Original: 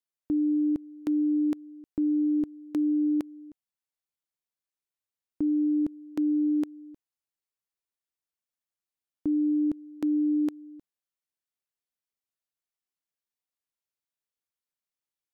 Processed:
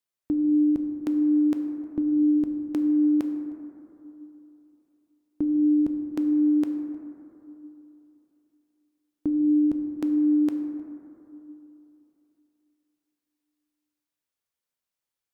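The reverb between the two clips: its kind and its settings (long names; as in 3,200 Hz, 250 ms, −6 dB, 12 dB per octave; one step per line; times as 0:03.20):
dense smooth reverb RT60 3.1 s, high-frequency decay 0.25×, DRR 5 dB
level +3 dB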